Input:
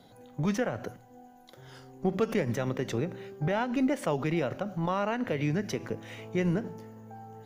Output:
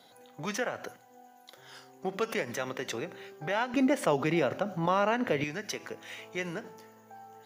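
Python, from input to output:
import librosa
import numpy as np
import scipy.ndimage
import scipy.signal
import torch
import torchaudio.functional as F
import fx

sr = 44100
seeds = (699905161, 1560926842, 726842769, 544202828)

y = fx.highpass(x, sr, hz=fx.steps((0.0, 1000.0), (3.74, 280.0), (5.44, 1300.0)), slope=6)
y = y * 10.0 ** (4.0 / 20.0)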